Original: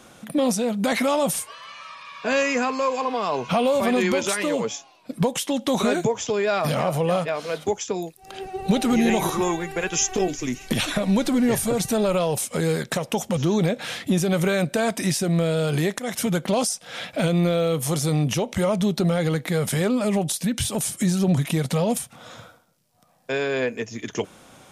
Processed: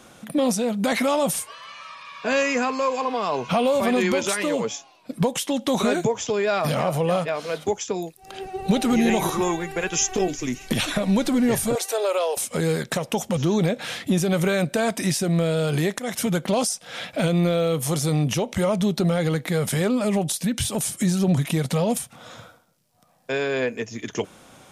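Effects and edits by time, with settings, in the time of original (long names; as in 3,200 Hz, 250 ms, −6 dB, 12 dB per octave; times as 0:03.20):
0:11.75–0:12.37: Butterworth high-pass 390 Hz 48 dB per octave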